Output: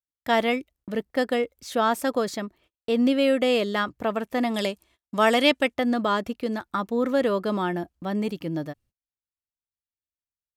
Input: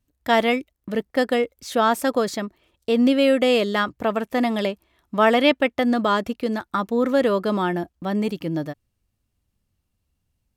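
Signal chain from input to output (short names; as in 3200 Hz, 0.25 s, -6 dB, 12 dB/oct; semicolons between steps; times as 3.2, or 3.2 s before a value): gate -53 dBFS, range -32 dB; 4.54–5.74 bell 8100 Hz +12 dB 1.8 oct; gain -3.5 dB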